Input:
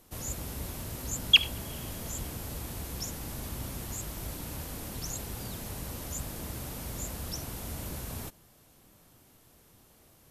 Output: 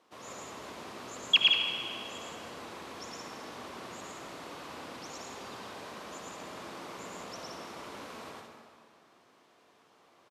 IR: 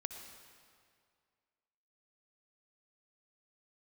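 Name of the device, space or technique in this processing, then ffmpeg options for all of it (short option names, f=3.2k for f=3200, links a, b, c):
station announcement: -filter_complex "[0:a]highpass=350,lowpass=4k,equalizer=f=1.1k:t=o:w=0.42:g=6,aecho=1:1:110.8|172:0.891|0.562[a];[1:a]atrim=start_sample=2205[b];[a][b]afir=irnorm=-1:irlink=0"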